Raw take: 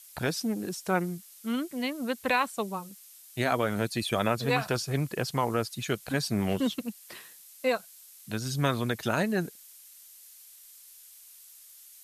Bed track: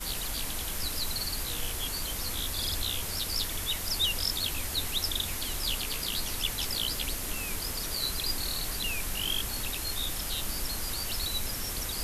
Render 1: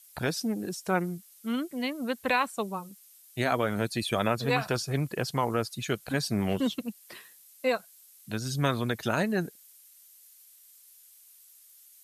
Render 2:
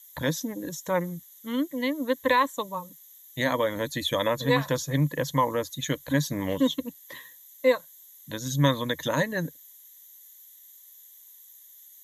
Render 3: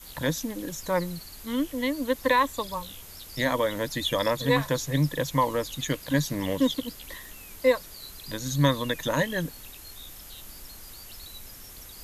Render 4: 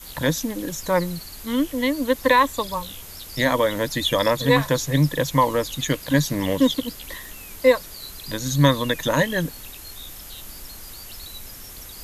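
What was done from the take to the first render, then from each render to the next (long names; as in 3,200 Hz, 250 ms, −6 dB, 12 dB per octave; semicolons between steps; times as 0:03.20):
broadband denoise 6 dB, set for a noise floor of −52 dBFS
EQ curve with evenly spaced ripples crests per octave 1.1, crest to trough 15 dB
mix in bed track −12 dB
level +5.5 dB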